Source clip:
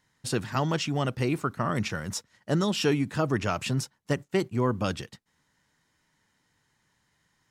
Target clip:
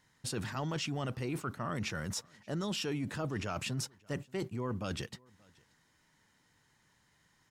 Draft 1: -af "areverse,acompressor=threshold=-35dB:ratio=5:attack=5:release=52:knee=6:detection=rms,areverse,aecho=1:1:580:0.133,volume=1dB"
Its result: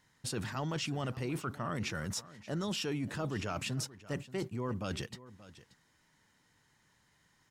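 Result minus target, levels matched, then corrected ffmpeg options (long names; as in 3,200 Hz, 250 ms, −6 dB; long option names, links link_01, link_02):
echo-to-direct +10 dB
-af "areverse,acompressor=threshold=-35dB:ratio=5:attack=5:release=52:knee=6:detection=rms,areverse,aecho=1:1:580:0.0422,volume=1dB"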